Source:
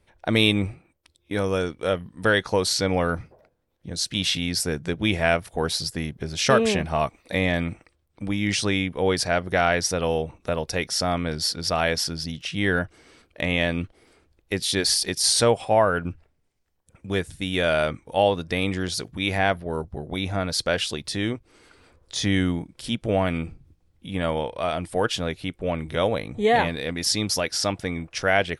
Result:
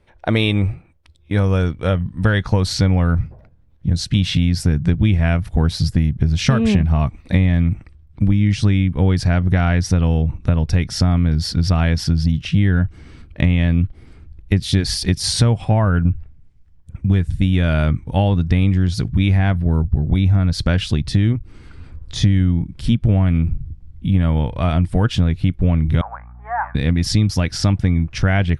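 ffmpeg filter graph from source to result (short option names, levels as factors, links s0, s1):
-filter_complex "[0:a]asettb=1/sr,asplit=3[s0][s1][s2];[s0]atrim=end=26.014[s3];[s1]atrim=start=26.01:end=26.75,asetpts=PTS-STARTPTS,afade=t=in:d=0.004:c=qsin,afade=t=out:st=0.736:d=0.004:c=qsin,asuperpass=centerf=1100:order=8:qfactor=1.3,aeval=exprs='val(0)+0.000794*(sin(2*PI*60*n/s)+sin(2*PI*2*60*n/s)/2+sin(2*PI*3*60*n/s)/3+sin(2*PI*4*60*n/s)/4+sin(2*PI*5*60*n/s)/5)':c=same[s4];[s2]atrim=start=26.746[s5];[s3][s4]acrossfade=d=0.004:c1=hsin:c2=qsin[s6];[s6][s5]acrossfade=d=0.004:c1=qsin:c2=hsin,lowpass=f=2800:p=1,asubboost=boost=11:cutoff=150,acompressor=threshold=0.126:ratio=6,volume=2.11"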